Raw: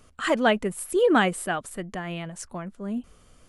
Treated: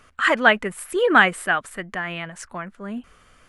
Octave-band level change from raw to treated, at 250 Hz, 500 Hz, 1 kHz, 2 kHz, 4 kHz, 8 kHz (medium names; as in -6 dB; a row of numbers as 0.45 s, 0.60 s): -1.0 dB, +1.0 dB, +5.5 dB, +10.5 dB, +5.0 dB, -1.0 dB